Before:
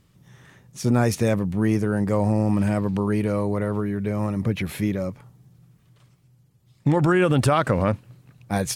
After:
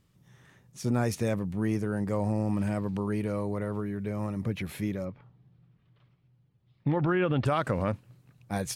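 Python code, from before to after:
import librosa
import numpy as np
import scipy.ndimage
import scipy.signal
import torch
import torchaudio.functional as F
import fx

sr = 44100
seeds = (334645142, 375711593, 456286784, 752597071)

y = fx.lowpass(x, sr, hz=3800.0, slope=24, at=(5.04, 7.45), fade=0.02)
y = y * librosa.db_to_amplitude(-7.5)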